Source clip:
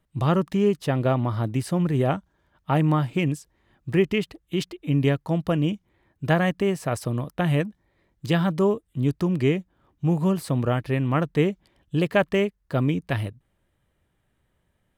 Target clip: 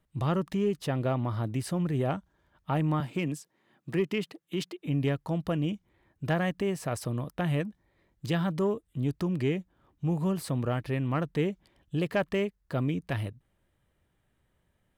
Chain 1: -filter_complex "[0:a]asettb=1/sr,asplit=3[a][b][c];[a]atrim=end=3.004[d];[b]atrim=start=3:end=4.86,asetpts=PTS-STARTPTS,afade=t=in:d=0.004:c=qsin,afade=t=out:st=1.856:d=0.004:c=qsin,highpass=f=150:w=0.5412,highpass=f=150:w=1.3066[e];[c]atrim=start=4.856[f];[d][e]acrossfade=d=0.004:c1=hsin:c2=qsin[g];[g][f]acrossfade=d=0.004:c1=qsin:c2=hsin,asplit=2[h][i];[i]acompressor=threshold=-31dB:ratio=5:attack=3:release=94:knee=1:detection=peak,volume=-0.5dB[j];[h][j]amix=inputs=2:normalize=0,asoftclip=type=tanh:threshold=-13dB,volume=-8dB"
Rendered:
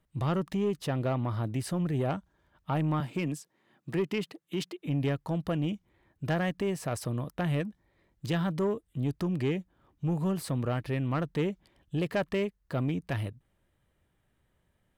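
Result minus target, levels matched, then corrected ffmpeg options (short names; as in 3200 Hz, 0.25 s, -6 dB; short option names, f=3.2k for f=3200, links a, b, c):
soft clip: distortion +9 dB
-filter_complex "[0:a]asettb=1/sr,asplit=3[a][b][c];[a]atrim=end=3.004[d];[b]atrim=start=3:end=4.86,asetpts=PTS-STARTPTS,afade=t=in:d=0.004:c=qsin,afade=t=out:st=1.856:d=0.004:c=qsin,highpass=f=150:w=0.5412,highpass=f=150:w=1.3066[e];[c]atrim=start=4.856[f];[d][e]acrossfade=d=0.004:c1=hsin:c2=qsin[g];[g][f]acrossfade=d=0.004:c1=qsin:c2=hsin,asplit=2[h][i];[i]acompressor=threshold=-31dB:ratio=5:attack=3:release=94:knee=1:detection=peak,volume=-0.5dB[j];[h][j]amix=inputs=2:normalize=0,asoftclip=type=tanh:threshold=-7dB,volume=-8dB"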